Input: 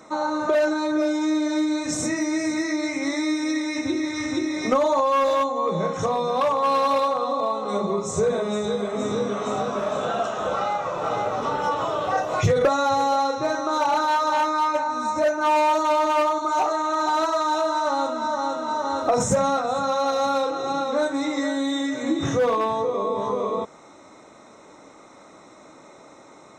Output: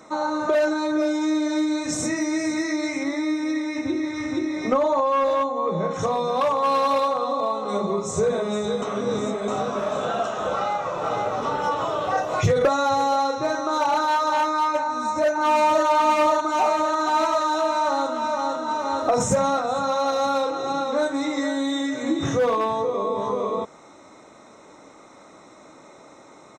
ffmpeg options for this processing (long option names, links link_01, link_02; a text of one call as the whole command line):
ffmpeg -i in.wav -filter_complex "[0:a]asettb=1/sr,asplit=3[link_01][link_02][link_03];[link_01]atrim=end=3.034[link_04];[link_02]atrim=start=3.03:end=5.91,asetpts=PTS-STARTPTS,afade=type=in:duration=0.004:curve=qsin,afade=type=out:start_time=2.876:duration=0.004:curve=qsin,highshelf=frequency=3400:gain=-10[link_05];[link_03]atrim=start=5.906[link_06];[link_04][link_05]acrossfade=duration=0.004:curve1=hsin:curve2=qsin[link_07];[link_07][link_06]acrossfade=duration=0.004:curve1=qsin:curve2=hsin,asplit=2[link_08][link_09];[link_09]afade=type=in:start_time=14.81:duration=0.01,afade=type=out:start_time=15.86:duration=0.01,aecho=0:1:540|1080|1620|2160|2700|3240|3780|4320|4860|5400|5940|6480:0.668344|0.467841|0.327489|0.229242|0.160469|0.112329|0.07863|0.055041|0.0385287|0.0269701|0.0188791|0.0132153[link_10];[link_08][link_10]amix=inputs=2:normalize=0,asplit=3[link_11][link_12][link_13];[link_11]atrim=end=8.822[link_14];[link_12]atrim=start=8.818:end=9.482,asetpts=PTS-STARTPTS,areverse[link_15];[link_13]atrim=start=9.478[link_16];[link_14][link_15]acrossfade=duration=0.004:curve1=hsin:curve2=hsin[link_17];[link_17][link_16]acrossfade=duration=0.004:curve1=hsin:curve2=hsin" out.wav